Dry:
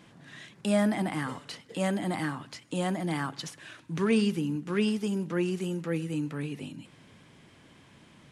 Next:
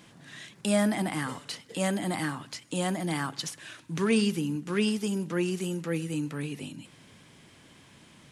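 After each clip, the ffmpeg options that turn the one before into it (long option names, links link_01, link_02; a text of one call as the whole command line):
ffmpeg -i in.wav -af "highshelf=frequency=3900:gain=8" out.wav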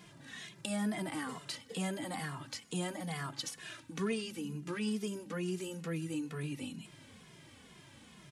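ffmpeg -i in.wav -filter_complex "[0:a]acompressor=threshold=-36dB:ratio=2,asplit=2[link_01][link_02];[link_02]adelay=2.4,afreqshift=-2.2[link_03];[link_01][link_03]amix=inputs=2:normalize=1,volume=1dB" out.wav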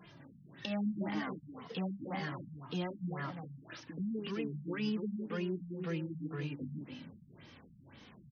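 ffmpeg -i in.wav -af "aecho=1:1:291:0.501,afftfilt=real='re*lt(b*sr/1024,230*pow(6600/230,0.5+0.5*sin(2*PI*1.9*pts/sr)))':imag='im*lt(b*sr/1024,230*pow(6600/230,0.5+0.5*sin(2*PI*1.9*pts/sr)))':win_size=1024:overlap=0.75" out.wav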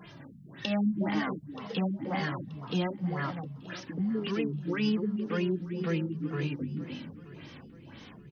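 ffmpeg -i in.wav -af "aecho=1:1:929|1858|2787:0.126|0.0466|0.0172,volume=7dB" out.wav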